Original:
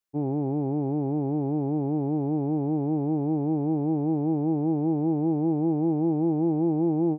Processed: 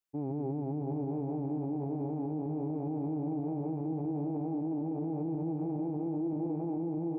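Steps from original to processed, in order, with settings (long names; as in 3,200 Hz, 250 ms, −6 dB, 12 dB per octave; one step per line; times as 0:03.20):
flanger 0.64 Hz, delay 2.9 ms, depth 3.6 ms, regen +77%
echo with a time of its own for lows and highs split 330 Hz, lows 143 ms, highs 638 ms, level −6 dB
brickwall limiter −27 dBFS, peak gain reduction 11.5 dB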